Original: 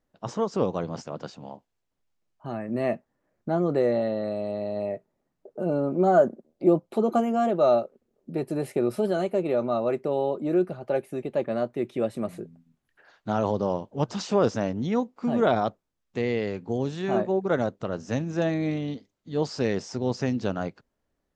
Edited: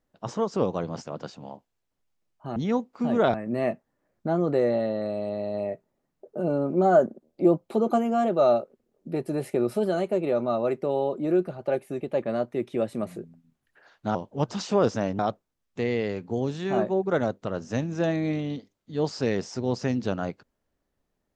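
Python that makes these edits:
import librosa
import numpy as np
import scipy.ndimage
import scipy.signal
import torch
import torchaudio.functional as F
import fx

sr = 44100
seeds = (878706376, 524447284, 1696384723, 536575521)

y = fx.edit(x, sr, fx.cut(start_s=13.37, length_s=0.38),
    fx.move(start_s=14.79, length_s=0.78, to_s=2.56), tone=tone)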